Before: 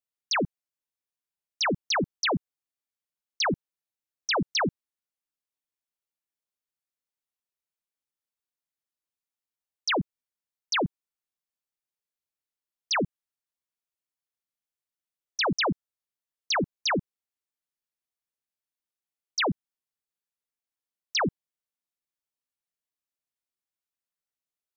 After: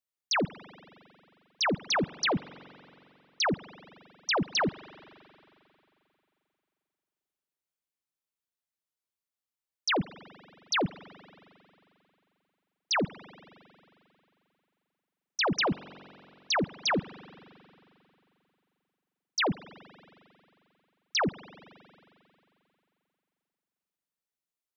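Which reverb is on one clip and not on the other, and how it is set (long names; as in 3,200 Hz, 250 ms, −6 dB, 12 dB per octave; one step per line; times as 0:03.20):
spring reverb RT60 2.9 s, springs 44 ms, chirp 35 ms, DRR 17.5 dB
level −1.5 dB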